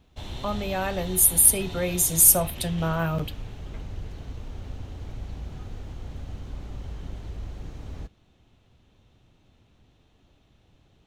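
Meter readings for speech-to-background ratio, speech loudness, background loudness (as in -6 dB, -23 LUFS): 18.5 dB, -20.0 LUFS, -38.5 LUFS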